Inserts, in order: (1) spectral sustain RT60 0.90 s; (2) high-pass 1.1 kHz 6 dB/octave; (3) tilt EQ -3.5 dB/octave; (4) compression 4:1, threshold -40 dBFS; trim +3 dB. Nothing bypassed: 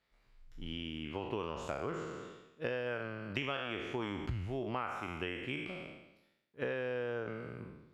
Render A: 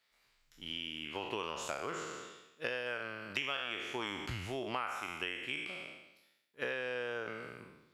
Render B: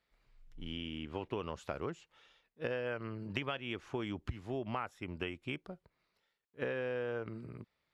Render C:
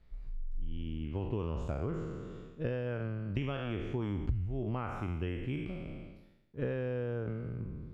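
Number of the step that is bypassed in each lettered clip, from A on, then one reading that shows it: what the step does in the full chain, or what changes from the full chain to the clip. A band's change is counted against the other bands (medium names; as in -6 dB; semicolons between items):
3, 8 kHz band +11.5 dB; 1, momentary loudness spread change +2 LU; 2, 125 Hz band +13.0 dB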